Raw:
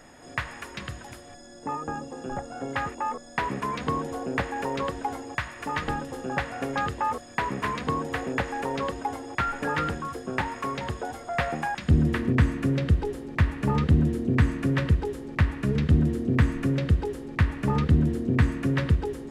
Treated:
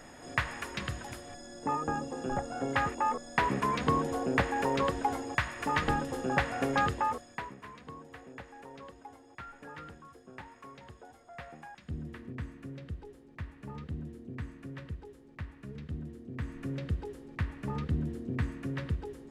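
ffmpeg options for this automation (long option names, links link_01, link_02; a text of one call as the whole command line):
ffmpeg -i in.wav -af "volume=8dB,afade=type=out:start_time=6.83:duration=0.41:silence=0.421697,afade=type=out:start_time=7.24:duration=0.32:silence=0.266073,afade=type=in:start_time=16.32:duration=0.43:silence=0.398107" out.wav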